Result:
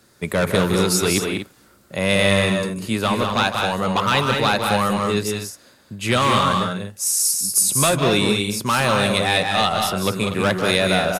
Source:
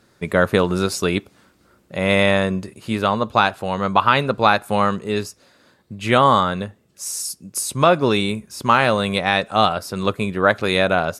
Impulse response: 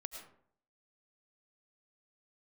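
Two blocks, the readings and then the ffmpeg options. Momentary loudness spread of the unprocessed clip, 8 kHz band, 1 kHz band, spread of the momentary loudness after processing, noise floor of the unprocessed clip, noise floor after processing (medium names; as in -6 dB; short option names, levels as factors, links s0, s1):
10 LU, +9.0 dB, -2.5 dB, 8 LU, -59 dBFS, -53 dBFS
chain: -filter_complex "[0:a]highshelf=f=6100:g=11,acrossover=split=170|2500[s0][s1][s2];[s1]asoftclip=type=hard:threshold=0.15[s3];[s0][s3][s2]amix=inputs=3:normalize=0,aecho=1:1:154.5|192.4|242:0.316|0.562|0.316"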